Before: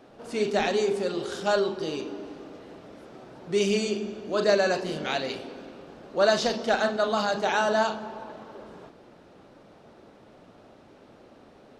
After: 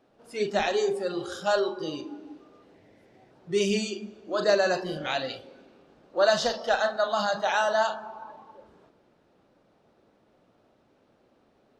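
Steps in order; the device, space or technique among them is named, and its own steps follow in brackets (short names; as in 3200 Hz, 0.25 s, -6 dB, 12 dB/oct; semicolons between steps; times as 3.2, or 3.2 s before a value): compressed reverb return (on a send at -12 dB: reverb RT60 1.2 s, pre-delay 81 ms + compressor, threshold -32 dBFS, peak gain reduction 13 dB); on the sum: spectral noise reduction 12 dB; 2.74–3.31 thirty-one-band EQ 100 Hz +10 dB, 1250 Hz -11 dB, 2000 Hz +11 dB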